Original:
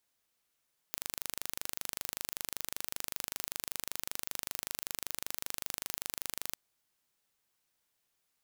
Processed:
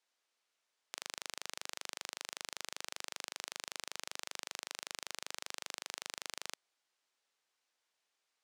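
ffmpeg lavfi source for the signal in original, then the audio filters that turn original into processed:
-f lavfi -i "aevalsrc='0.376*eq(mod(n,1750),0)':d=5.6:s=44100"
-af "highpass=410,lowpass=6.5k"

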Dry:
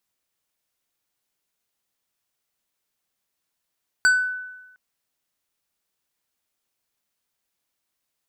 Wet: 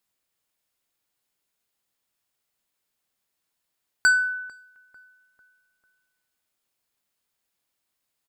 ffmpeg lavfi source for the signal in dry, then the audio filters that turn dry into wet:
-f lavfi -i "aevalsrc='0.266*pow(10,-3*t/1.07)*sin(2*PI*1500*t+0.53*pow(10,-3*t/0.43)*sin(2*PI*4.1*1500*t))':d=0.71:s=44100"
-filter_complex "[0:a]bandreject=f=5.9k:w=16,asplit=2[a][b];[b]adelay=447,lowpass=f=1.6k:p=1,volume=-21dB,asplit=2[c][d];[d]adelay=447,lowpass=f=1.6k:p=1,volume=0.51,asplit=2[e][f];[f]adelay=447,lowpass=f=1.6k:p=1,volume=0.51,asplit=2[g][h];[h]adelay=447,lowpass=f=1.6k:p=1,volume=0.51[i];[a][c][e][g][i]amix=inputs=5:normalize=0"

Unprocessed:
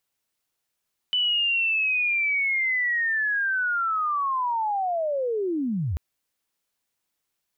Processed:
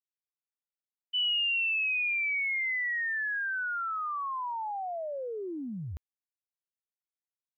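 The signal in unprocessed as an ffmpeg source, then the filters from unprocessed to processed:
-f lavfi -i "aevalsrc='pow(10,(-20-3.5*t/4.84)/20)*sin(2*PI*(3000*t-2935*t*t/(2*4.84)))':d=4.84:s=44100"
-af "agate=range=-33dB:threshold=-19dB:ratio=3:detection=peak"

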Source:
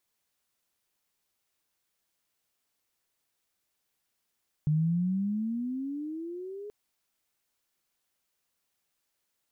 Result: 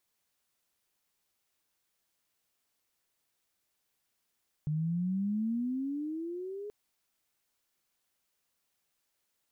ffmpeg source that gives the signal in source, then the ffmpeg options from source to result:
-f lavfi -i "aevalsrc='pow(10,(-22-16*t/2.03)/20)*sin(2*PI*149*2.03/(18*log(2)/12)*(exp(18*log(2)/12*t/2.03)-1))':d=2.03:s=44100"
-af "alimiter=level_in=4.5dB:limit=-24dB:level=0:latency=1,volume=-4.5dB"

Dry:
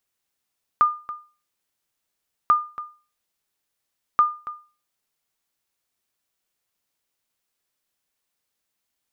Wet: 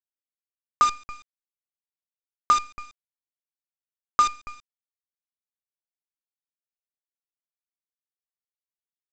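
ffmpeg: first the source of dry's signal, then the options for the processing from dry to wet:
-f lavfi -i "aevalsrc='0.355*(sin(2*PI*1210*mod(t,1.69))*exp(-6.91*mod(t,1.69)/0.35)+0.158*sin(2*PI*1210*max(mod(t,1.69)-0.28,0))*exp(-6.91*max(mod(t,1.69)-0.28,0)/0.35))':d=5.07:s=44100"
-af "lowpass=2.3k,equalizer=f=100:t=o:w=1.4:g=2,aresample=16000,acrusher=bits=5:dc=4:mix=0:aa=0.000001,aresample=44100"

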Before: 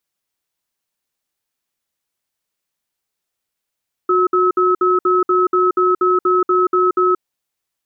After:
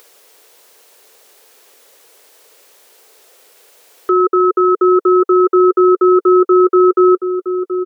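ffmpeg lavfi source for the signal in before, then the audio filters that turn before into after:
-f lavfi -i "aevalsrc='0.2*(sin(2*PI*365*t)+sin(2*PI*1290*t))*clip(min(mod(t,0.24),0.18-mod(t,0.24))/0.005,0,1)':d=3.12:s=44100"
-filter_complex "[0:a]highpass=f=450:t=q:w=3.8,asplit=2[a][b];[b]adelay=726,lowpass=f=1.3k:p=1,volume=-10dB,asplit=2[c][d];[d]adelay=726,lowpass=f=1.3k:p=1,volume=0.54,asplit=2[e][f];[f]adelay=726,lowpass=f=1.3k:p=1,volume=0.54,asplit=2[g][h];[h]adelay=726,lowpass=f=1.3k:p=1,volume=0.54,asplit=2[i][j];[j]adelay=726,lowpass=f=1.3k:p=1,volume=0.54,asplit=2[k][l];[l]adelay=726,lowpass=f=1.3k:p=1,volume=0.54[m];[c][e][g][i][k][m]amix=inputs=6:normalize=0[n];[a][n]amix=inputs=2:normalize=0,acompressor=mode=upward:threshold=-23dB:ratio=2.5"

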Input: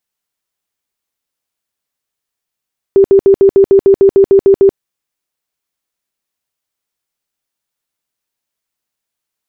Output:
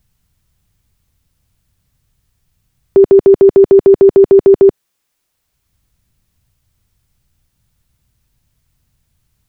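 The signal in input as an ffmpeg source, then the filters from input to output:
-f lavfi -i "aevalsrc='0.75*sin(2*PI*392*mod(t,0.15))*lt(mod(t,0.15),32/392)':d=1.8:s=44100"
-filter_complex "[0:a]acrossover=split=130[a][b];[a]acompressor=mode=upward:threshold=-49dB:ratio=2.5[c];[c][b]amix=inputs=2:normalize=0,alimiter=level_in=10dB:limit=-1dB:release=50:level=0:latency=1"

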